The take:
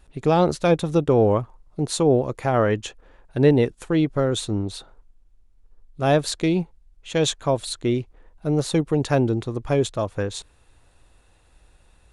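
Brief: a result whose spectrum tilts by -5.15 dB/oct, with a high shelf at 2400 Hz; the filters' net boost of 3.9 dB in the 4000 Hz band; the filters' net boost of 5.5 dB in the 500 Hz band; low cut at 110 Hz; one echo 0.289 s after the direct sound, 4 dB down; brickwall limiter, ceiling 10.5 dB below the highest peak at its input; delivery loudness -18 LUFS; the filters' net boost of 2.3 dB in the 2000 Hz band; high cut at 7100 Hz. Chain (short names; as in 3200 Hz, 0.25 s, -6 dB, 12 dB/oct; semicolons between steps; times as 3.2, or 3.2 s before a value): HPF 110 Hz; LPF 7100 Hz; bell 500 Hz +6.5 dB; bell 2000 Hz +3.5 dB; high shelf 2400 Hz -6.5 dB; bell 4000 Hz +9 dB; limiter -11 dBFS; echo 0.289 s -4 dB; gain +4 dB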